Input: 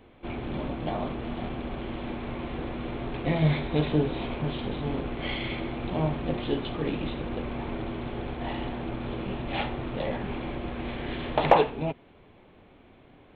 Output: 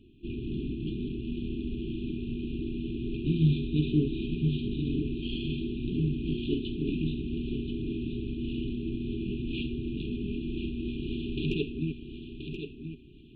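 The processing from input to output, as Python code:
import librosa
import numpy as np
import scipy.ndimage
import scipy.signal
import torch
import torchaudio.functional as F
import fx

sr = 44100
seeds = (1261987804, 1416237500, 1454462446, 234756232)

y = fx.brickwall_bandstop(x, sr, low_hz=420.0, high_hz=2400.0)
y = fx.high_shelf(y, sr, hz=3900.0, db=-9.5)
y = fx.echo_feedback(y, sr, ms=1029, feedback_pct=25, wet_db=-8.0)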